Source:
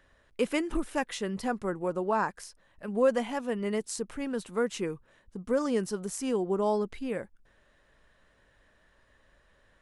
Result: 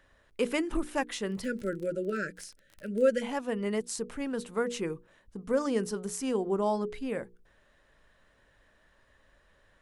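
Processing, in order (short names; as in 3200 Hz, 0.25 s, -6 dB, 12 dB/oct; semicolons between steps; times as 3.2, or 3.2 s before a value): 1.43–3.22 spectral delete 630–1300 Hz; notches 60/120/180/240/300/360/420/480 Hz; 1.11–3.09 crackle 29/s -38 dBFS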